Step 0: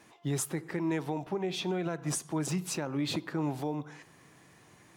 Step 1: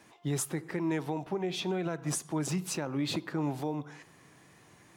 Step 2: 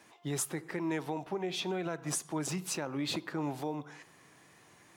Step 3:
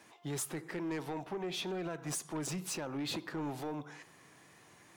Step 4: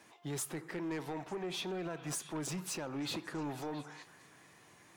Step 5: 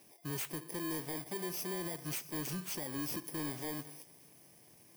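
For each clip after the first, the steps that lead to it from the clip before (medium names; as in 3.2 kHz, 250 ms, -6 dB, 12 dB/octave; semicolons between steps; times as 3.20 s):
wow and flutter 25 cents
bass shelf 270 Hz -7 dB
saturation -32.5 dBFS, distortion -13 dB
repeats whose band climbs or falls 225 ms, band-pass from 1.2 kHz, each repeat 0.7 oct, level -9.5 dB; trim -1 dB
bit-reversed sample order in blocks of 32 samples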